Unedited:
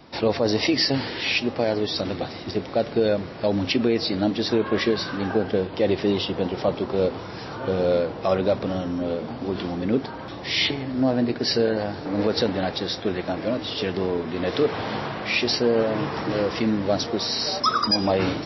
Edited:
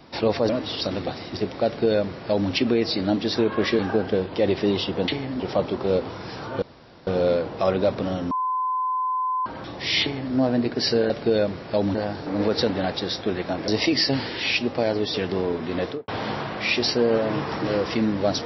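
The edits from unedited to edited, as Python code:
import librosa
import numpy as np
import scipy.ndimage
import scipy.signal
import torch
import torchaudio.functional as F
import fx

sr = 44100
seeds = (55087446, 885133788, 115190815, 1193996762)

y = fx.studio_fade_out(x, sr, start_s=14.42, length_s=0.31)
y = fx.edit(y, sr, fx.swap(start_s=0.49, length_s=1.46, other_s=13.47, other_length_s=0.32),
    fx.duplicate(start_s=2.8, length_s=0.85, to_s=11.74),
    fx.cut(start_s=4.93, length_s=0.27),
    fx.insert_room_tone(at_s=7.71, length_s=0.45),
    fx.bleep(start_s=8.95, length_s=1.15, hz=1020.0, db=-21.5),
    fx.duplicate(start_s=10.66, length_s=0.32, to_s=6.49), tone=tone)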